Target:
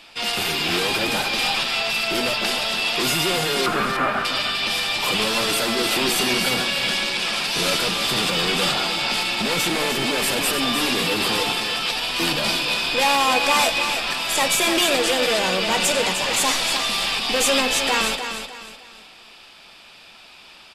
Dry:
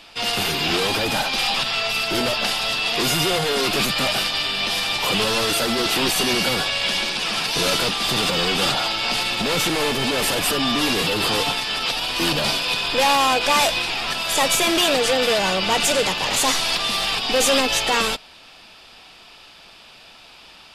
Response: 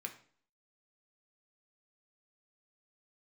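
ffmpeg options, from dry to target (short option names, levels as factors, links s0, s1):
-filter_complex "[0:a]asettb=1/sr,asplit=3[s0][s1][s2];[s0]atrim=end=3.664[s3];[s1]atrim=start=3.66:end=4.25,asetpts=PTS-STARTPTS,afade=t=in:d=0.004:c=qsin,afade=t=out:st=0.586:d=0.004:c=qsin,lowpass=f=1400:t=q:w=2.9[s4];[s2]atrim=start=4.246[s5];[s3][s4]acrossfade=d=0.004:c1=hsin:c2=qsin[s6];[s6][s5]acrossfade=d=0.004:c1=qsin:c2=hsin,aecho=1:1:304|608|912|1216:0.398|0.131|0.0434|0.0143,asplit=2[s7][s8];[1:a]atrim=start_sample=2205[s9];[s8][s9]afir=irnorm=-1:irlink=0,volume=0.708[s10];[s7][s10]amix=inputs=2:normalize=0,volume=0.631"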